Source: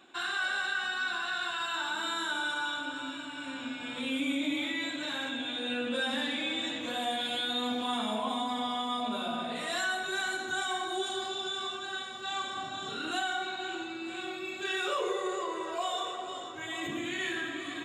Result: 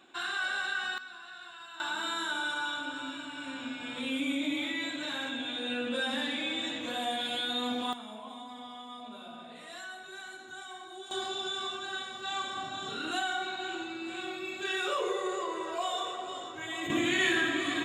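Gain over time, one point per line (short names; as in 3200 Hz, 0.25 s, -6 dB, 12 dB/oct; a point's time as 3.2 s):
-1 dB
from 0.98 s -13.5 dB
from 1.8 s -0.5 dB
from 7.93 s -12 dB
from 11.11 s 0 dB
from 16.9 s +7 dB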